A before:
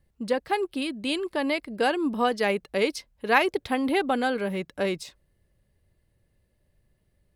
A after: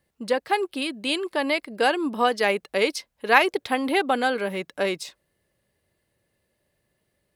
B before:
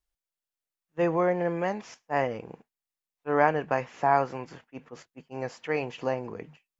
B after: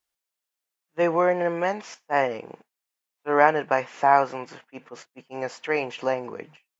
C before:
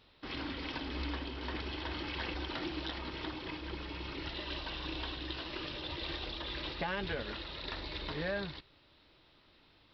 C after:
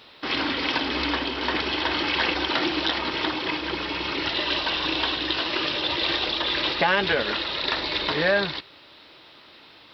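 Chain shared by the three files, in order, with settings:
high-pass 410 Hz 6 dB/octave; normalise loudness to -24 LUFS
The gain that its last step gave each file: +4.5 dB, +6.0 dB, +16.5 dB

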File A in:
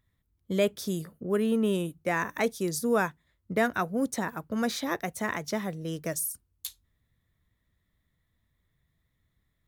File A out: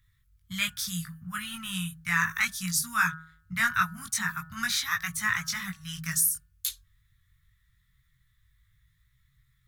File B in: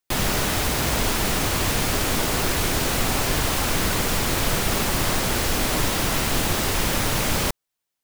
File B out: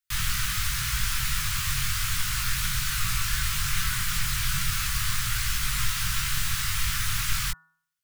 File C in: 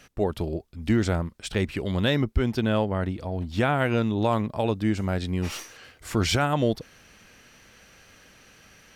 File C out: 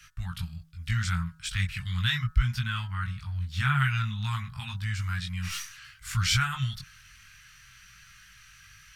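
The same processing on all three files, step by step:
chorus voices 4, 0.33 Hz, delay 20 ms, depth 3.5 ms; Chebyshev band-stop 140–1300 Hz, order 3; de-hum 160.9 Hz, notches 11; peak normalisation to -12 dBFS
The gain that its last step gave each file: +11.0 dB, 0.0 dB, +4.5 dB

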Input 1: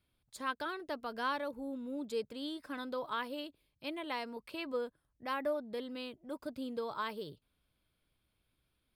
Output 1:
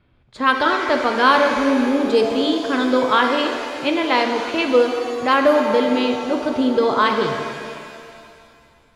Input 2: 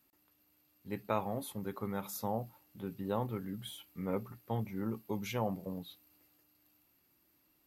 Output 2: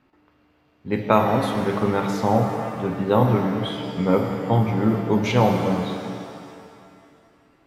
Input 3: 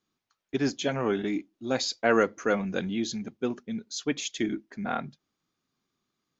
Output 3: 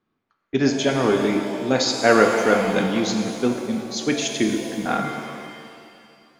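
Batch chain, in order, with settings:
level-controlled noise filter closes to 2 kHz, open at -28 dBFS; pitch-shifted reverb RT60 2.3 s, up +7 st, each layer -8 dB, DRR 3.5 dB; peak normalisation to -2 dBFS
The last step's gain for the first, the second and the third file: +20.0 dB, +15.5 dB, +6.5 dB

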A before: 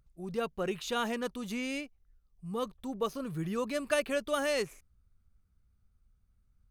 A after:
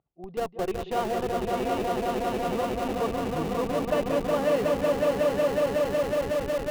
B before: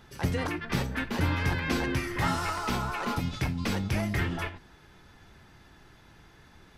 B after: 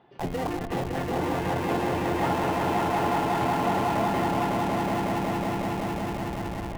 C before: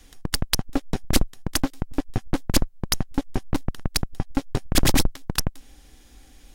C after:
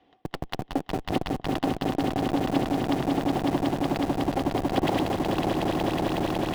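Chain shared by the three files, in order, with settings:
cabinet simulation 190–2800 Hz, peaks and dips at 230 Hz -4 dB, 350 Hz +3 dB, 730 Hz +9 dB, 1.6 kHz -9 dB, 2.3 kHz -8 dB; band-stop 1.3 kHz, Q 12; echo with a slow build-up 184 ms, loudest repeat 5, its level -4 dB; in parallel at -6 dB: Schmitt trigger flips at -30.5 dBFS; on the sum: normalise loudness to -27 LUFS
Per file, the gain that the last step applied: -1.0 dB, -1.5 dB, -3.5 dB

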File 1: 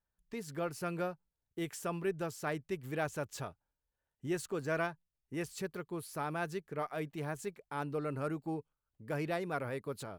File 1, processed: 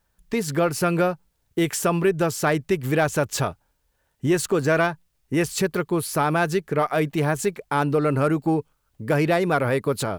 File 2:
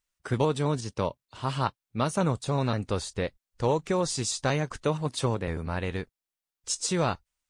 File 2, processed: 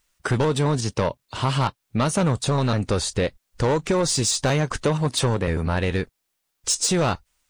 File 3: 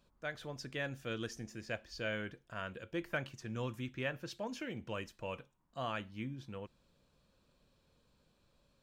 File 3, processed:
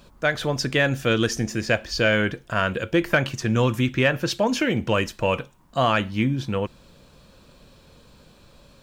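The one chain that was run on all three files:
saturation -23 dBFS; compression 2:1, threshold -37 dBFS; normalise loudness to -23 LUFS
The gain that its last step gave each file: +18.5 dB, +14.5 dB, +20.5 dB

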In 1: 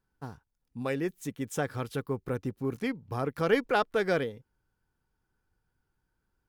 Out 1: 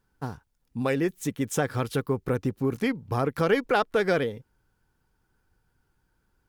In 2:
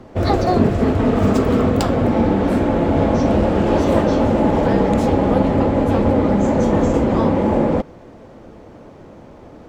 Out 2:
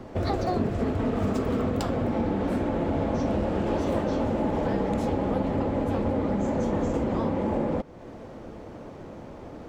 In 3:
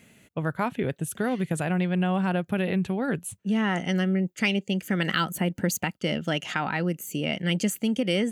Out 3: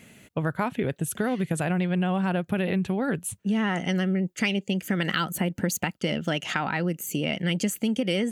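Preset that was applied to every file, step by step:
compression 2:1, threshold -30 dBFS; vibrato 15 Hz 30 cents; normalise loudness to -27 LUFS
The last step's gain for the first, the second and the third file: +7.5 dB, -1.0 dB, +4.5 dB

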